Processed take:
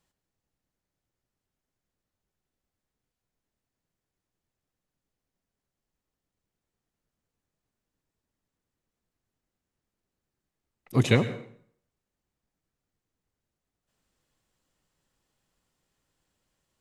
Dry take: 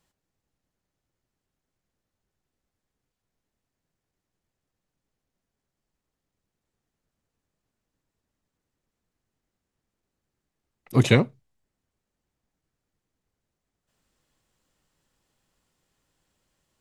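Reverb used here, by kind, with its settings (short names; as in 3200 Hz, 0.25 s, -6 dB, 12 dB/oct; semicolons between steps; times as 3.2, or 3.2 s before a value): plate-style reverb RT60 0.61 s, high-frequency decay 0.85×, pre-delay 90 ms, DRR 13 dB; gain -3.5 dB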